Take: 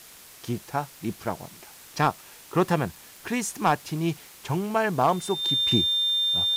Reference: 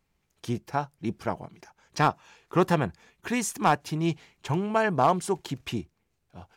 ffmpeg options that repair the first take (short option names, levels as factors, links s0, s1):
-af "adeclick=t=4,bandreject=f=3600:w=30,afwtdn=0.0045,asetnsamples=n=441:p=0,asendcmd='5.71 volume volume -7dB',volume=1"